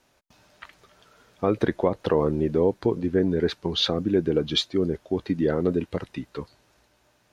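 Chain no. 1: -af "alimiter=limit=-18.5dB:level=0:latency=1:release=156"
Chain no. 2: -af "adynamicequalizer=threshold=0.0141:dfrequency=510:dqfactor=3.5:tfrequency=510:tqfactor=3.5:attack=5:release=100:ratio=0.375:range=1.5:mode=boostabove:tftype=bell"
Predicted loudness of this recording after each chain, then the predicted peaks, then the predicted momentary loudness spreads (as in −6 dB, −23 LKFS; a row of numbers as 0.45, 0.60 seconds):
−31.0, −24.0 LKFS; −18.5, −6.5 dBFS; 10, 10 LU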